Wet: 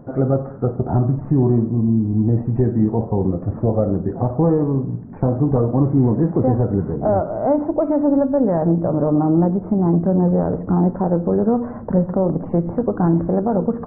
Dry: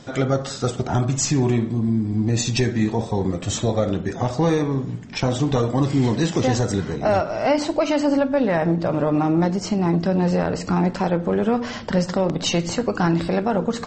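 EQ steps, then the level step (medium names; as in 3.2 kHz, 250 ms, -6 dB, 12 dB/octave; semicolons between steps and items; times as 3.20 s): Gaussian low-pass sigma 8.7 samples; +4.0 dB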